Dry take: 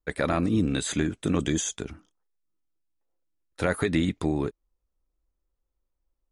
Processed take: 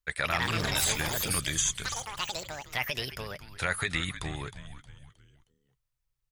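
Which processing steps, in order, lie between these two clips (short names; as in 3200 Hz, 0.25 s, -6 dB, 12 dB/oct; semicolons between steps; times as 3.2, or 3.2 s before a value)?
frequency-shifting echo 0.313 s, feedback 41%, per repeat -140 Hz, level -12 dB; echoes that change speed 0.19 s, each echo +6 st, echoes 3; EQ curve 130 Hz 0 dB, 260 Hz -14 dB, 1900 Hz +8 dB; gain -5 dB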